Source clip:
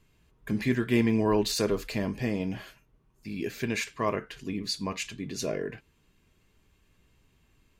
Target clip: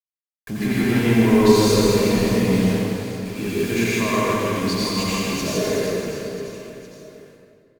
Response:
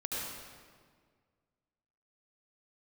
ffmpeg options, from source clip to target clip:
-filter_complex "[0:a]acrusher=bits=6:mix=0:aa=0.000001,asoftclip=type=tanh:threshold=-20dB,aecho=1:1:160|368|638.4|989.9|1447:0.631|0.398|0.251|0.158|0.1[link_01];[1:a]atrim=start_sample=2205,asetrate=37926,aresample=44100[link_02];[link_01][link_02]afir=irnorm=-1:irlink=0,volume=4dB"

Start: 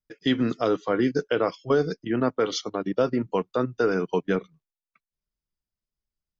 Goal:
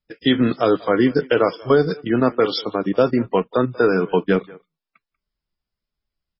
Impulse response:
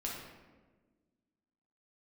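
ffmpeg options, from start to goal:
-filter_complex "[0:a]asplit=2[link_01][link_02];[link_02]adelay=190,highpass=300,lowpass=3400,asoftclip=type=hard:threshold=-20dB,volume=-20dB[link_03];[link_01][link_03]amix=inputs=2:normalize=0,volume=7dB" -ar 16000 -c:a libmp3lame -b:a 16k

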